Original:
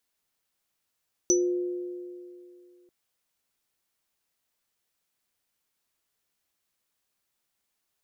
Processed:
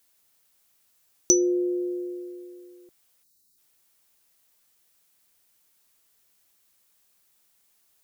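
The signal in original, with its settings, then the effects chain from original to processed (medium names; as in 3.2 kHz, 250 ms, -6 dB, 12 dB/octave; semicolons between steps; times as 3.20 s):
sine partials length 1.59 s, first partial 356 Hz, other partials 500/5960 Hz, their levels -14/3 dB, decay 2.50 s, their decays 2.57/0.21 s, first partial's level -19.5 dB
in parallel at +3 dB: compression, threshold -33 dBFS; on the sum: treble shelf 6.4 kHz +8 dB; time-frequency box 3.23–3.58 s, 410–3700 Hz -16 dB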